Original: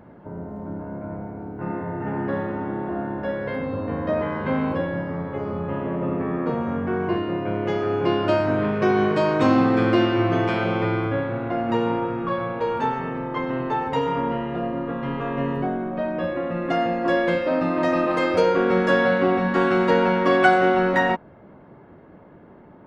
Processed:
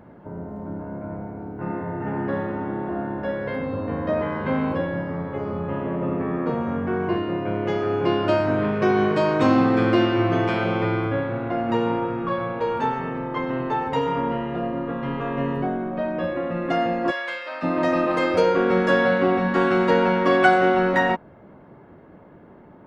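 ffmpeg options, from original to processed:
ffmpeg -i in.wav -filter_complex "[0:a]asplit=3[link_01][link_02][link_03];[link_01]afade=type=out:start_time=17.1:duration=0.02[link_04];[link_02]highpass=1200,afade=type=in:start_time=17.1:duration=0.02,afade=type=out:start_time=17.62:duration=0.02[link_05];[link_03]afade=type=in:start_time=17.62:duration=0.02[link_06];[link_04][link_05][link_06]amix=inputs=3:normalize=0" out.wav

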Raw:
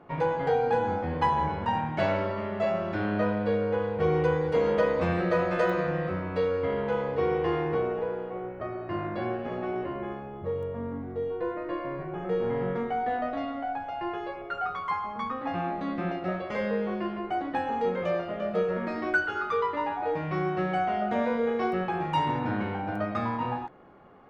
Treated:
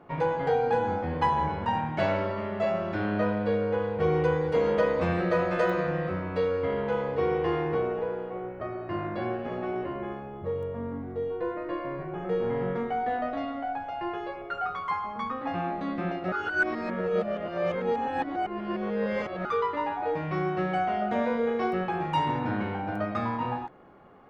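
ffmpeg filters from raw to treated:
ffmpeg -i in.wav -filter_complex "[0:a]asplit=3[link_01][link_02][link_03];[link_01]atrim=end=16.322[link_04];[link_02]atrim=start=16.318:end=19.452,asetpts=PTS-STARTPTS,areverse[link_05];[link_03]atrim=start=19.448[link_06];[link_04][link_05]acrossfade=duration=0.004:curve1=hsin:curve2=hsin[link_07];[link_07][link_06]acrossfade=duration=0.004:curve1=hsin:curve2=hsin" out.wav

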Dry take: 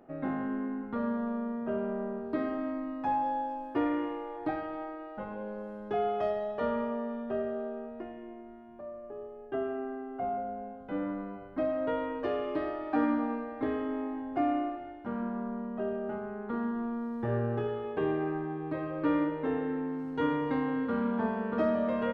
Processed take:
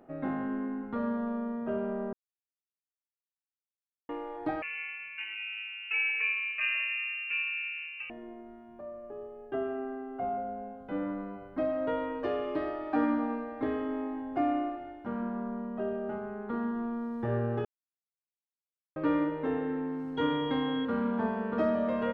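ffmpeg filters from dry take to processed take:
ffmpeg -i in.wav -filter_complex "[0:a]asettb=1/sr,asplit=3[link_01][link_02][link_03];[link_01]atrim=end=4.624[link_04];[link_02]atrim=start=4.62:end=8.1,asetpts=PTS-STARTPTS,afade=type=in:duration=0.004:curve=qsin,afade=type=out:start_time=3.476:duration=0.004:curve=qsin,lowpass=frequency=2600:width_type=q:width=0.5098,lowpass=frequency=2600:width_type=q:width=0.6013,lowpass=frequency=2600:width_type=q:width=0.9,lowpass=frequency=2600:width_type=q:width=2.563,afreqshift=-3000[link_05];[link_03]atrim=start=8.096[link_06];[link_04][link_05]acrossfade=duration=0.004:curve1=hsin:curve2=qsin[link_07];[link_07][link_06]acrossfade=duration=0.004:curve1=qsin:curve2=hsin,asettb=1/sr,asplit=3[link_08][link_09][link_10];[link_08]atrim=end=20.174[link_11];[link_09]atrim=start=20.17:end=20.85,asetpts=PTS-STARTPTS,afade=type=in:duration=0.004:curve=qsin,afade=type=out:start_time=0.676:duration=0.004:curve=qsin,aeval=exprs='val(0)+0.00794*sin(2*PI*3300*n/s)':channel_layout=same[link_12];[link_10]atrim=start=20.846[link_13];[link_11][link_12]acrossfade=duration=0.004:curve1=hsin:curve2=qsin[link_14];[link_14][link_13]acrossfade=duration=0.004:curve1=qsin:curve2=hsin,asplit=5[link_15][link_16][link_17][link_18][link_19];[link_15]atrim=end=2.13,asetpts=PTS-STARTPTS,afade=type=out:start_time=2.126:duration=0.004:curve=hsin[link_20];[link_16]atrim=start=2.13:end=4.09,asetpts=PTS-STARTPTS,volume=0[link_21];[link_17]atrim=start=4.09:end=17.65,asetpts=PTS-STARTPTS,afade=type=in:duration=0.004:curve=hsin,afade=type=out:start_time=13.556:duration=0.004:curve=hsin[link_22];[link_18]atrim=start=17.65:end=18.96,asetpts=PTS-STARTPTS,volume=0[link_23];[link_19]atrim=start=18.96,asetpts=PTS-STARTPTS,afade=type=in:duration=0.004:curve=hsin[link_24];[link_20][link_21][link_22][link_23][link_24]concat=n=5:v=0:a=1" out.wav

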